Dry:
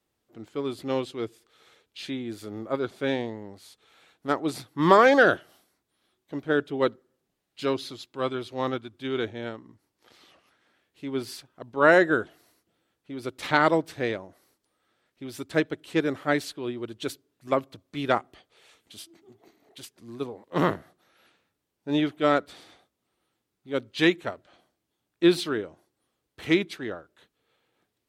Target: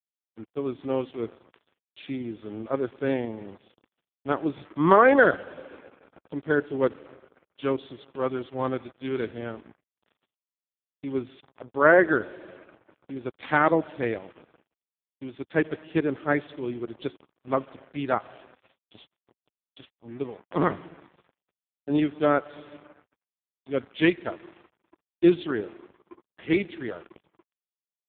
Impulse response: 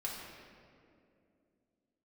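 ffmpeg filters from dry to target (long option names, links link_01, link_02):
-filter_complex "[0:a]asplit=2[link_01][link_02];[1:a]atrim=start_sample=2205,lowpass=8100[link_03];[link_02][link_03]afir=irnorm=-1:irlink=0,volume=-17dB[link_04];[link_01][link_04]amix=inputs=2:normalize=0,acrusher=bits=6:mix=0:aa=0.5" -ar 8000 -c:a libopencore_amrnb -b:a 4750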